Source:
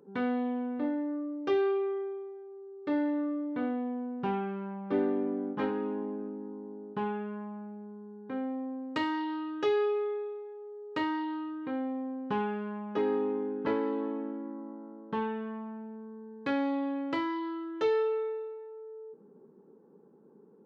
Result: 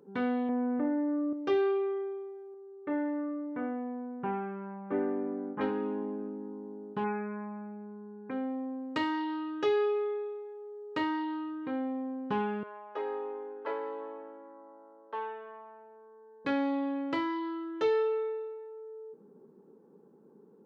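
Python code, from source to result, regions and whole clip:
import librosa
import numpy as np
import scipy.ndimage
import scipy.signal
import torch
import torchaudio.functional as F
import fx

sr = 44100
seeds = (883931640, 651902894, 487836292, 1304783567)

y = fx.chain(x, sr, fx.lowpass(hz=2000.0, slope=24),
    fx.env_flatten(amount_pct=70), at=(0.49, 1.33))
y = fx.chain(y, sr, fx.lowpass(hz=2200.0, slope=24),
    fx.low_shelf(hz=430.0, db=-4.5), at=(2.54, 5.61))
y = fx.chain(y, sr, fx.brickwall_lowpass(high_hz=2700.0),
    fx.high_shelf(hz=2100.0, db=12.0), at=(7.04, 8.31))
y = fx.chain(y, sr, fx.highpass(hz=480.0, slope=24),
    fx.high_shelf(hz=2600.0, db=-10.5), at=(12.63, 16.45))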